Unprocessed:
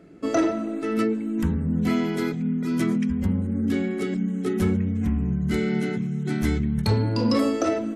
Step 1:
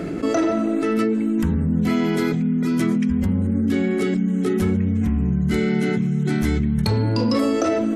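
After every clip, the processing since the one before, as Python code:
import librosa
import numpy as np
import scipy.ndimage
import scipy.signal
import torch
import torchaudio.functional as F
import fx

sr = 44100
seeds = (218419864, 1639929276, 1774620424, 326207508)

y = fx.env_flatten(x, sr, amount_pct=70)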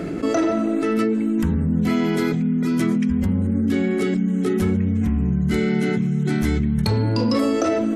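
y = x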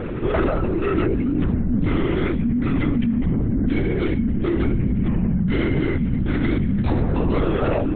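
y = fx.lpc_vocoder(x, sr, seeds[0], excitation='whisper', order=10)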